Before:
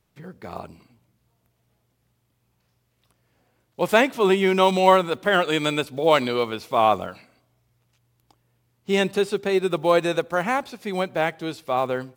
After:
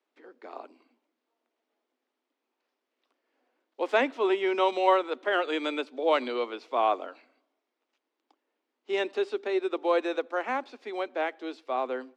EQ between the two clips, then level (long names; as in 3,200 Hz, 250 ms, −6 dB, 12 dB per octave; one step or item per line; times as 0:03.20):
Butterworth high-pass 250 Hz 72 dB per octave
high-frequency loss of the air 140 metres
−6.0 dB